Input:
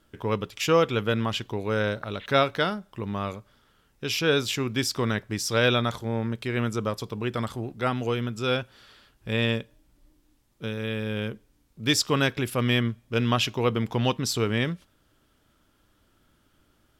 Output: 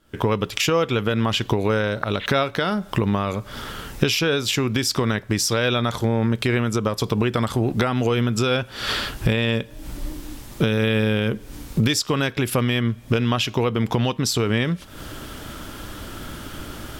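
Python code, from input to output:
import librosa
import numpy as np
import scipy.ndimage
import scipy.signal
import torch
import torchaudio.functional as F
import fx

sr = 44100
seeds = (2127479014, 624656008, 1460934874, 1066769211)

y = fx.recorder_agc(x, sr, target_db=-12.5, rise_db_per_s=76.0, max_gain_db=30)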